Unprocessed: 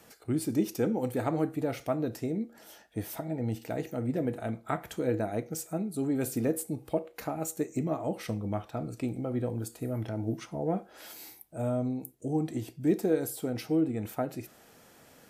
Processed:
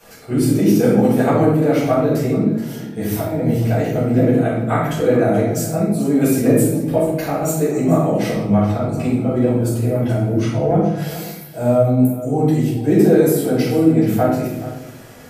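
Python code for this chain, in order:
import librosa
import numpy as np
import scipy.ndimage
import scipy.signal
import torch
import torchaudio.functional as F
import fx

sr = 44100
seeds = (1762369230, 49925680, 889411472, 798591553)

p1 = x + fx.echo_single(x, sr, ms=428, db=-15.0, dry=0)
p2 = fx.room_shoebox(p1, sr, seeds[0], volume_m3=230.0, walls='mixed', distance_m=5.1)
y = p2 * librosa.db_to_amplitude(1.0)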